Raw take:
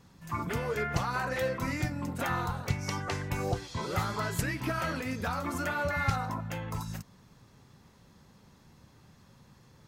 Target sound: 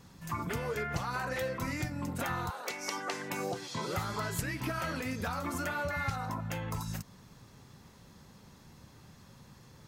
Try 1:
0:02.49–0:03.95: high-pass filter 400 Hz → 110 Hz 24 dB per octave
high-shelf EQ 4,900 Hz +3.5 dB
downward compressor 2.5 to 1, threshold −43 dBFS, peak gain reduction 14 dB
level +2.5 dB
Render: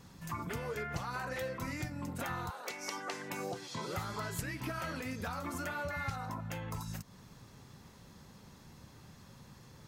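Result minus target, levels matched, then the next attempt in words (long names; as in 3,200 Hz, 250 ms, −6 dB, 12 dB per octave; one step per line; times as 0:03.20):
downward compressor: peak gain reduction +4 dB
0:02.49–0:03.95: high-pass filter 400 Hz → 110 Hz 24 dB per octave
high-shelf EQ 4,900 Hz +3.5 dB
downward compressor 2.5 to 1, threshold −36.5 dBFS, peak gain reduction 10 dB
level +2.5 dB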